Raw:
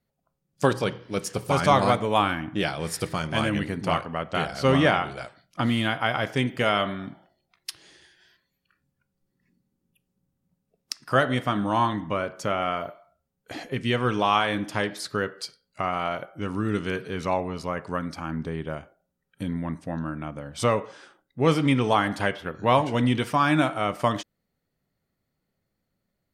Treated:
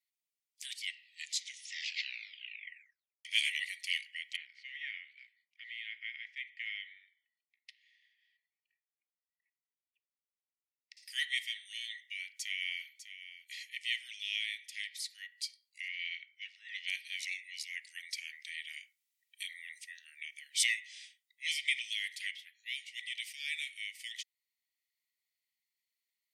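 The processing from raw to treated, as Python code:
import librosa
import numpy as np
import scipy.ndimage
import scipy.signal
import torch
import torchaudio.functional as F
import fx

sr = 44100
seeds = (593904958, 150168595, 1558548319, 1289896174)

y = fx.lowpass(x, sr, hz=1100.0, slope=12, at=(4.36, 10.97))
y = fx.echo_throw(y, sr, start_s=12.18, length_s=0.66, ms=600, feedback_pct=20, wet_db=-11.0)
y = fx.lowpass(y, sr, hz=4800.0, slope=24, at=(15.88, 16.88))
y = fx.edit(y, sr, fx.tape_stop(start_s=0.66, length_s=2.59), tone=tone)
y = scipy.signal.sosfilt(scipy.signal.cheby1(8, 1.0, 1900.0, 'highpass', fs=sr, output='sos'), y)
y = fx.rider(y, sr, range_db=10, speed_s=2.0)
y = F.gain(torch.from_numpy(y), -3.5).numpy()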